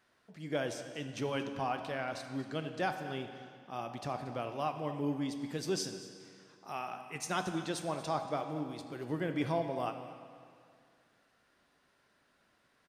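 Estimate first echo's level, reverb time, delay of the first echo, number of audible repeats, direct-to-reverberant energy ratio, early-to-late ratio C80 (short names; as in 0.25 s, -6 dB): -16.5 dB, 2.3 s, 0.232 s, 1, 6.5 dB, 8.5 dB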